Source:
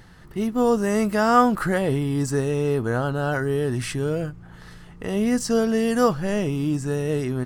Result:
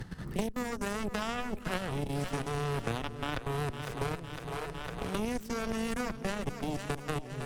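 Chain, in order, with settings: level quantiser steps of 12 dB; added harmonics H 2 -10 dB, 3 -9 dB, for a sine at -13 dBFS; low shelf 270 Hz +11.5 dB; split-band echo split 380 Hz, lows 0.213 s, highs 0.506 s, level -12.5 dB; three-band squash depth 100%

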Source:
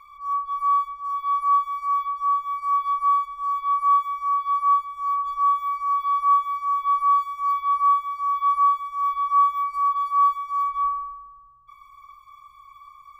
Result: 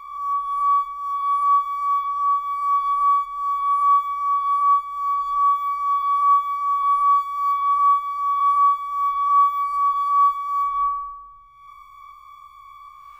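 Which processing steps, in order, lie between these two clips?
spectral swells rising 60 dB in 1.05 s; gain +1.5 dB

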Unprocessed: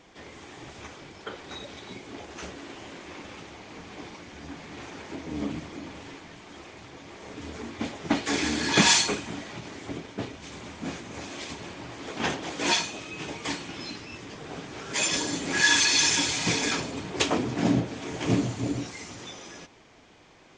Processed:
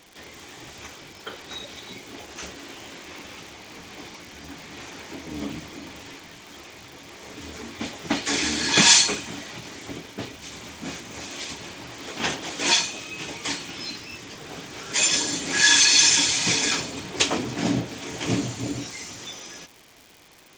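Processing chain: crackle 200/s -44 dBFS; high shelf 2300 Hz +9 dB; gain -1 dB

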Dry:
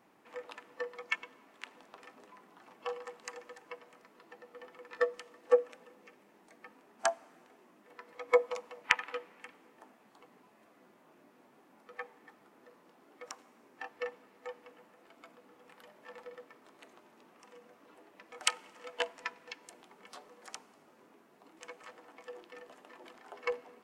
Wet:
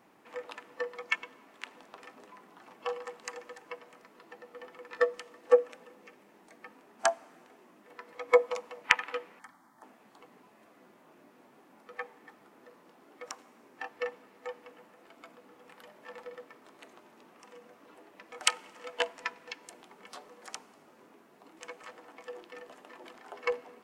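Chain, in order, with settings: 9.39–9.83 fixed phaser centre 1100 Hz, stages 4; gain +3.5 dB

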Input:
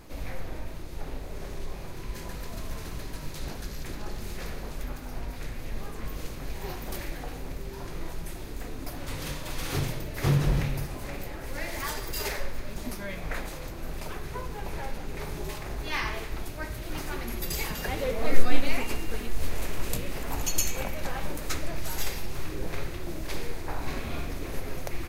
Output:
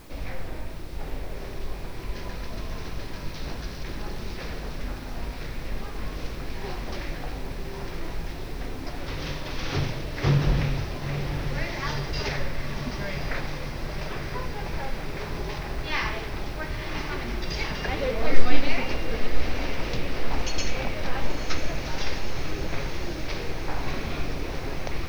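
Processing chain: elliptic low-pass 5700 Hz, stop band 40 dB; requantised 10-bit, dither triangular; diffused feedback echo 0.967 s, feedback 73%, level -8 dB; gain +3 dB

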